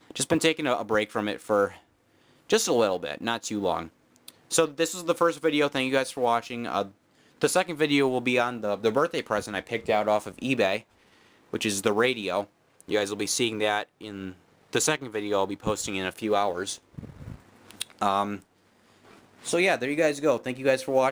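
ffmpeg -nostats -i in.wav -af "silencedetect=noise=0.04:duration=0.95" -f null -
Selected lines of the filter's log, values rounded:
silence_start: 18.36
silence_end: 19.46 | silence_duration: 1.11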